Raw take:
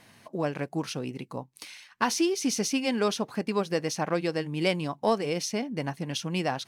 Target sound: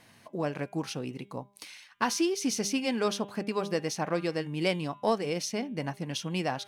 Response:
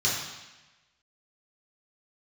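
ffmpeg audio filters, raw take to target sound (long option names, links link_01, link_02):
-af "bandreject=frequency=201.2:width_type=h:width=4,bandreject=frequency=402.4:width_type=h:width=4,bandreject=frequency=603.6:width_type=h:width=4,bandreject=frequency=804.8:width_type=h:width=4,bandreject=frequency=1006:width_type=h:width=4,bandreject=frequency=1207.2:width_type=h:width=4,bandreject=frequency=1408.4:width_type=h:width=4,bandreject=frequency=1609.6:width_type=h:width=4,bandreject=frequency=1810.8:width_type=h:width=4,bandreject=frequency=2012:width_type=h:width=4,bandreject=frequency=2213.2:width_type=h:width=4,bandreject=frequency=2414.4:width_type=h:width=4,bandreject=frequency=2615.6:width_type=h:width=4,bandreject=frequency=2816.8:width_type=h:width=4,bandreject=frequency=3018:width_type=h:width=4,bandreject=frequency=3219.2:width_type=h:width=4,bandreject=frequency=3420.4:width_type=h:width=4,bandreject=frequency=3621.6:width_type=h:width=4,bandreject=frequency=3822.8:width_type=h:width=4,volume=-2dB"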